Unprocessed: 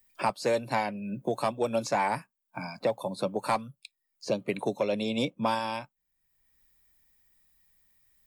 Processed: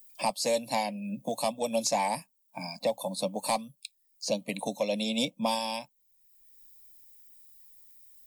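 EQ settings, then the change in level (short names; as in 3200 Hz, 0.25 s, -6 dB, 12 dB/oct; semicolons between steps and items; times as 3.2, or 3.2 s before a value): high shelf 3300 Hz +12 dB; fixed phaser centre 380 Hz, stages 6; 0.0 dB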